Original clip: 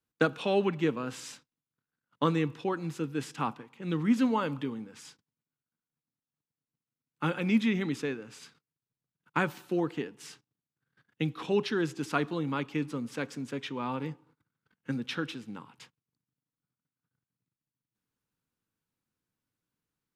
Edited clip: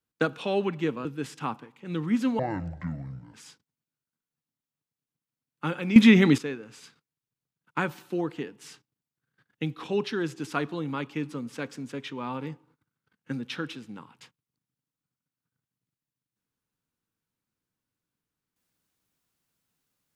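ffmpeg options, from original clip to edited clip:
ffmpeg -i in.wav -filter_complex "[0:a]asplit=6[link_01][link_02][link_03][link_04][link_05][link_06];[link_01]atrim=end=1.052[link_07];[link_02]atrim=start=3.018:end=4.364[link_08];[link_03]atrim=start=4.36:end=4.93,asetpts=PTS-STARTPTS,asetrate=26460,aresample=44100[link_09];[link_04]atrim=start=4.926:end=7.552[link_10];[link_05]atrim=start=7.548:end=7.972,asetpts=PTS-STARTPTS,volume=12dB[link_11];[link_06]atrim=start=7.968[link_12];[link_07][link_08]acrossfade=duration=0.004:curve1=hsin:curve2=hsin[link_13];[link_13][link_09]acrossfade=duration=0.004:curve1=hsin:curve2=hsin[link_14];[link_14][link_10]acrossfade=duration=0.004:curve1=hsin:curve2=hsin[link_15];[link_15][link_11]acrossfade=duration=0.004:curve1=hsin:curve2=hsin[link_16];[link_16][link_12]acrossfade=duration=0.004:curve1=hsin:curve2=hsin" out.wav

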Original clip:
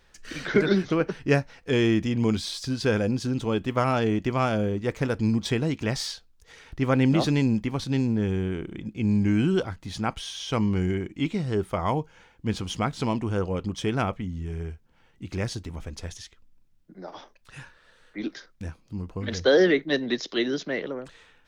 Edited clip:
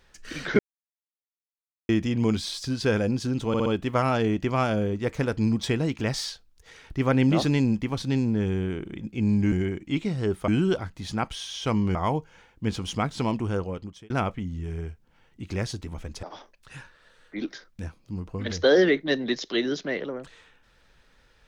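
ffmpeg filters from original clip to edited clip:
ffmpeg -i in.wav -filter_complex "[0:a]asplit=11[link_01][link_02][link_03][link_04][link_05][link_06][link_07][link_08][link_09][link_10][link_11];[link_01]atrim=end=0.59,asetpts=PTS-STARTPTS,afade=type=out:start_time=0.586:duration=0.004:curve=hsin[link_12];[link_02]atrim=start=0.59:end=1.89,asetpts=PTS-STARTPTS,volume=0[link_13];[link_03]atrim=start=1.89:end=3.542,asetpts=PTS-STARTPTS,afade=type=in:duration=0.004:curve=hsin[link_14];[link_04]atrim=start=3.478:end=3.542[link_15];[link_05]atrim=start=3.478:end=3.542[link_16];[link_06]atrim=start=3.478:end=9.342[link_17];[link_07]atrim=start=10.808:end=11.772[link_18];[link_08]atrim=start=9.338:end=10.812[link_19];[link_09]atrim=start=11.768:end=13.92,asetpts=PTS-STARTPTS,afade=type=out:start_time=1.532:duration=0.62[link_20];[link_10]atrim=start=13.92:end=16.052,asetpts=PTS-STARTPTS,afade=type=in:duration=0.004:curve=hsin[link_21];[link_11]atrim=start=17.048[link_22];[link_12][link_13][link_14]concat=n=3:v=0:a=1[link_23];[link_23][link_15]acrossfade=duration=0.004:curve1=hsin:curve2=hsin[link_24];[link_24][link_16]acrossfade=duration=0.004:curve1=hsin:curve2=hsin[link_25];[link_25][link_17]acrossfade=duration=0.004:curve1=hsin:curve2=hsin[link_26];[link_26][link_18]acrossfade=duration=0.004:curve1=hsin:curve2=hsin[link_27];[link_27][link_19]acrossfade=duration=0.004:curve1=hsin:curve2=hsin[link_28];[link_20][link_21]concat=n=2:v=0:a=1[link_29];[link_28][link_29]acrossfade=duration=0.004:curve1=hsin:curve2=hsin[link_30];[link_30][link_22]acrossfade=duration=0.004:curve1=hsin:curve2=hsin" out.wav

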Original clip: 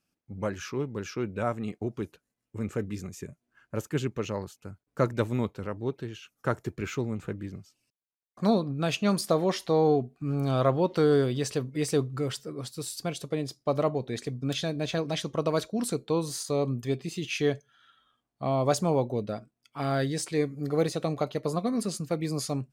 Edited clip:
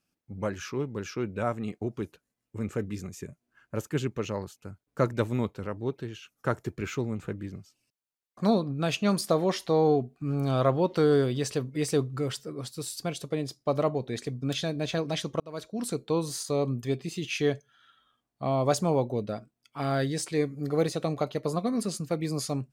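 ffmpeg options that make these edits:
ffmpeg -i in.wav -filter_complex "[0:a]asplit=2[link_01][link_02];[link_01]atrim=end=15.4,asetpts=PTS-STARTPTS,afade=type=out:start_time=15.396:duration=0.004:curve=hsin[link_03];[link_02]atrim=start=15.4,asetpts=PTS-STARTPTS,afade=type=in:duration=0.82:curve=qsin[link_04];[link_03][link_04]concat=n=2:v=0:a=1" out.wav

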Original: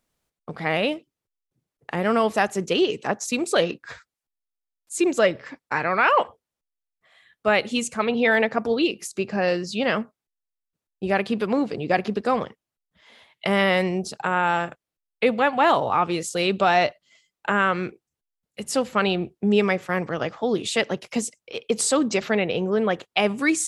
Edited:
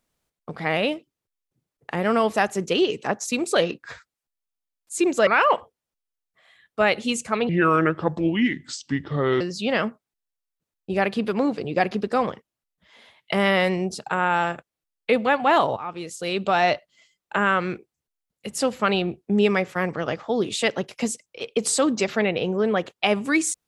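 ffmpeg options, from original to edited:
ffmpeg -i in.wav -filter_complex "[0:a]asplit=5[link_01][link_02][link_03][link_04][link_05];[link_01]atrim=end=5.272[link_06];[link_02]atrim=start=5.938:end=8.164[link_07];[link_03]atrim=start=8.16:end=9.54,asetpts=PTS-STARTPTS,asetrate=31752,aresample=44100[link_08];[link_04]atrim=start=9.536:end=15.9,asetpts=PTS-STARTPTS,afade=type=out:start_time=6.36:duration=0.004:curve=hsin:silence=0.188365[link_09];[link_05]atrim=start=15.9,asetpts=PTS-STARTPTS,afade=type=in:duration=0.97:silence=0.188365[link_10];[link_06][link_07]acrossfade=duration=0.004:curve1=hsin:curve2=hsin[link_11];[link_11][link_08]acrossfade=duration=0.004:curve1=hsin:curve2=hsin[link_12];[link_09][link_10]concat=n=2:v=0:a=1[link_13];[link_12][link_13]acrossfade=duration=0.004:curve1=hsin:curve2=hsin" out.wav

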